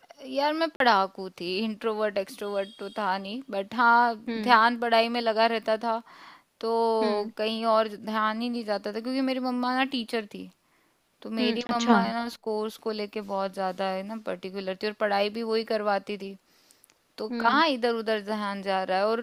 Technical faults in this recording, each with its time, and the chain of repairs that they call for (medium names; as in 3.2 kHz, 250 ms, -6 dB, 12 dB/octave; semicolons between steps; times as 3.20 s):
0.76–0.80 s: dropout 42 ms
11.67–11.69 s: dropout 21 ms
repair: interpolate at 0.76 s, 42 ms; interpolate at 11.67 s, 21 ms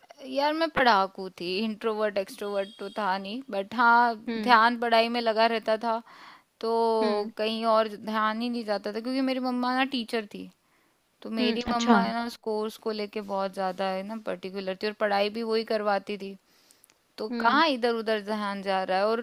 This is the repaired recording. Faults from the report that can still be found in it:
nothing left